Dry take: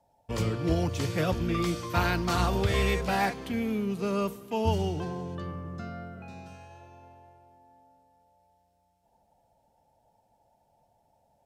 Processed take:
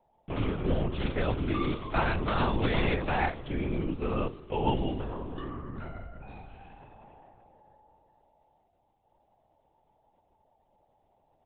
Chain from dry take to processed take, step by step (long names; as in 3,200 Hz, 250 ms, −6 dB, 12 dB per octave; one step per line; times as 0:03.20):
linear-prediction vocoder at 8 kHz whisper
level −1 dB